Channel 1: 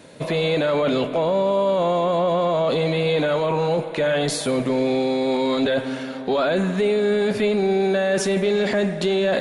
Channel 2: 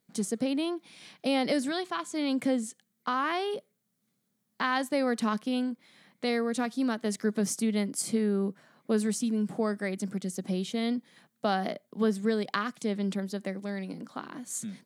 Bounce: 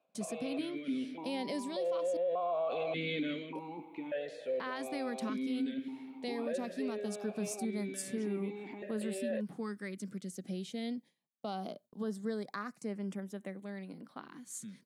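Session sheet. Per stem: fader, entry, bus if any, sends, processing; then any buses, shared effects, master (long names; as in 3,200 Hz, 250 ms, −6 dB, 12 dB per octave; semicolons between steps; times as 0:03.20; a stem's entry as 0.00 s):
+3.0 dB, 0.00 s, no send, formant filter that steps through the vowels 1.7 Hz; automatic ducking −11 dB, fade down 0.25 s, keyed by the second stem
−8.5 dB, 0.00 s, muted 0:02.17–0:03.55, no send, auto-filter notch saw up 0.21 Hz 590–7,500 Hz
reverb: not used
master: noise gate with hold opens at −44 dBFS; brickwall limiter −27.5 dBFS, peak gain reduction 8 dB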